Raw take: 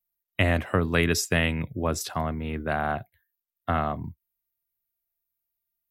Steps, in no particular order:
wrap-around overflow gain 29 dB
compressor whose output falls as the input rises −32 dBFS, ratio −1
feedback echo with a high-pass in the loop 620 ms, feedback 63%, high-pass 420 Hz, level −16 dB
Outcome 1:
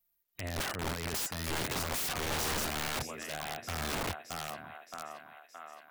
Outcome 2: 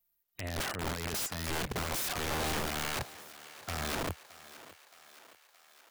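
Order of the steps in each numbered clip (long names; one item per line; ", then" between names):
feedback echo with a high-pass in the loop, then compressor whose output falls as the input rises, then wrap-around overflow
compressor whose output falls as the input rises, then wrap-around overflow, then feedback echo with a high-pass in the loop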